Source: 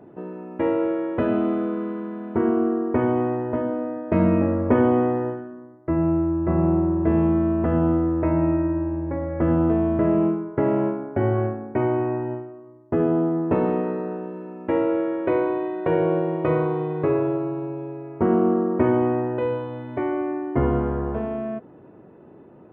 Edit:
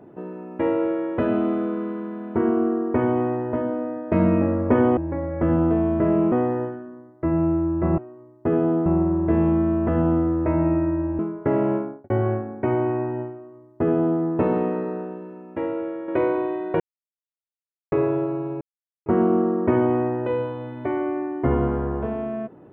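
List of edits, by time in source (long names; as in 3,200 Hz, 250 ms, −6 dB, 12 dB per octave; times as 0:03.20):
0:08.96–0:10.31: move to 0:04.97
0:10.93–0:11.22: fade out and dull
0:12.45–0:13.33: duplicate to 0:06.63
0:14.04–0:15.20: fade out quadratic, to −6.5 dB
0:15.92–0:17.04: silence
0:17.73–0:18.18: silence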